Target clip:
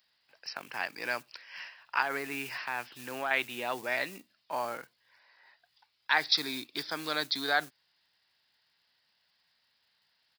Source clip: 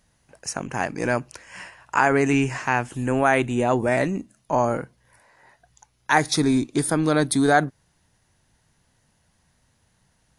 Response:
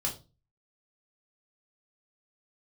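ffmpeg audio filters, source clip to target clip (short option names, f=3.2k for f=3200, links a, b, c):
-filter_complex "[0:a]asettb=1/sr,asplit=3[a][b][c];[a]atrim=end=2.024[d];[b]atrim=start=2.02:end=3.31,asetpts=PTS-STARTPTS,afade=t=in:d=0.004:c=qsin,afade=t=out:st=1.286:d=0.004:c=qsin,deesser=0.95[e];[c]atrim=start=3.306[f];[d][e]acrossfade=d=0.004:c1=hsin:c2=qsin[g];[g][f]acrossfade=d=0.004:c1=qsin:c2=hsin,aresample=11025,aresample=44100,acrossover=split=170|3700[h][i][j];[h]acrusher=bits=5:mode=log:mix=0:aa=0.000001[k];[k][i][j]amix=inputs=3:normalize=0,aderivative,volume=7dB"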